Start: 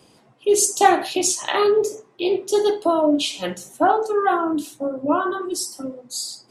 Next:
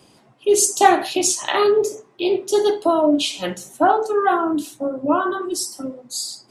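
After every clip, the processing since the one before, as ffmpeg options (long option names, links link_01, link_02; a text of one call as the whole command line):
ffmpeg -i in.wav -af "bandreject=frequency=480:width=12,volume=1.5dB" out.wav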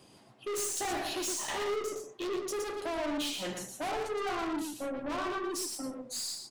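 ffmpeg -i in.wav -af "aeval=exprs='(tanh(22.4*val(0)+0.1)-tanh(0.1))/22.4':channel_layout=same,aecho=1:1:117:0.531,volume=-6dB" out.wav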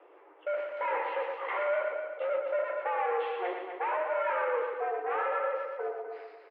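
ffmpeg -i in.wav -af "aecho=1:1:251|502|753:0.422|0.0928|0.0204,highpass=frequency=150:width_type=q:width=0.5412,highpass=frequency=150:width_type=q:width=1.307,lowpass=frequency=2200:width_type=q:width=0.5176,lowpass=frequency=2200:width_type=q:width=0.7071,lowpass=frequency=2200:width_type=q:width=1.932,afreqshift=180,volume=3.5dB" out.wav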